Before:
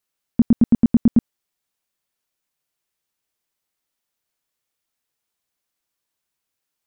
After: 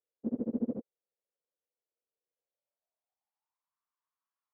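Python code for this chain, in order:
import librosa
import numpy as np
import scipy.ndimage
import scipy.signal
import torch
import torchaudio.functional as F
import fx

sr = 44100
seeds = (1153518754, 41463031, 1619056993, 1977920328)

y = fx.stretch_vocoder_free(x, sr, factor=0.66)
y = fx.filter_sweep_bandpass(y, sr, from_hz=490.0, to_hz=1100.0, start_s=2.35, end_s=3.82, q=5.2)
y = y * 10.0 ** (4.5 / 20.0)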